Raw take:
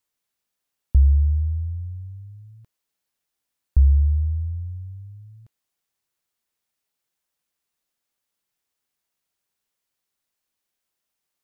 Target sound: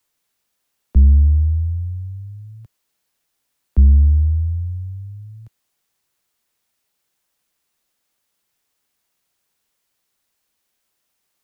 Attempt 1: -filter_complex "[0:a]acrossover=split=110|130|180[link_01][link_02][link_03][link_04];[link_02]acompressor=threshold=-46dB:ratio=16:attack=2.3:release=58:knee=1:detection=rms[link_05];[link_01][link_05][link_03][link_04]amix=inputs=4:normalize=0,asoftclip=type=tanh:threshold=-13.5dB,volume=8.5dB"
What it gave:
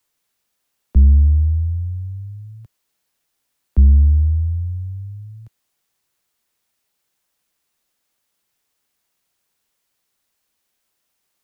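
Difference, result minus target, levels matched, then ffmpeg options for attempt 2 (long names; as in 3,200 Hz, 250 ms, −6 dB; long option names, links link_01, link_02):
downward compressor: peak gain reduction −8 dB
-filter_complex "[0:a]acrossover=split=110|130|180[link_01][link_02][link_03][link_04];[link_02]acompressor=threshold=-54.5dB:ratio=16:attack=2.3:release=58:knee=1:detection=rms[link_05];[link_01][link_05][link_03][link_04]amix=inputs=4:normalize=0,asoftclip=type=tanh:threshold=-13.5dB,volume=8.5dB"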